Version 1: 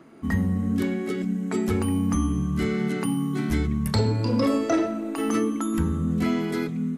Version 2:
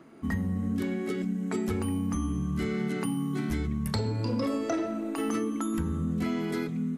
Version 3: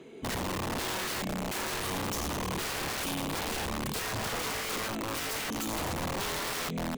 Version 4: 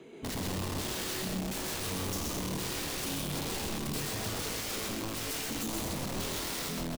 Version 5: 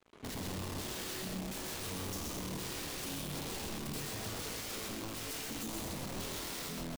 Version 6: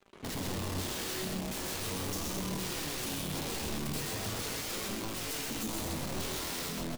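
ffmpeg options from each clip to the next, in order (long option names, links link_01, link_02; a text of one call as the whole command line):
ffmpeg -i in.wav -af "acompressor=threshold=-23dB:ratio=6,volume=-2.5dB" out.wav
ffmpeg -i in.wav -af "asoftclip=type=tanh:threshold=-29.5dB,superequalizer=7b=3.55:10b=0.501:12b=2.51:13b=3.55:15b=2.24,aeval=exprs='(mod(29.9*val(0)+1,2)-1)/29.9':channel_layout=same" out.wav
ffmpeg -i in.wav -filter_complex "[0:a]acrossover=split=500|3000[link_01][link_02][link_03];[link_02]acompressor=threshold=-45dB:ratio=3[link_04];[link_01][link_04][link_03]amix=inputs=3:normalize=0,asplit=2[link_05][link_06];[link_06]adelay=21,volume=-11dB[link_07];[link_05][link_07]amix=inputs=2:normalize=0,asplit=2[link_08][link_09];[link_09]aecho=0:1:128.3|163.3:0.708|0.316[link_10];[link_08][link_10]amix=inputs=2:normalize=0,volume=-2dB" out.wav
ffmpeg -i in.wav -af "acrusher=bits=6:mix=0:aa=0.5,volume=-5.5dB" out.wav
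ffmpeg -i in.wav -af "flanger=delay=5:depth=8.4:regen=69:speed=0.4:shape=sinusoidal,volume=8.5dB" out.wav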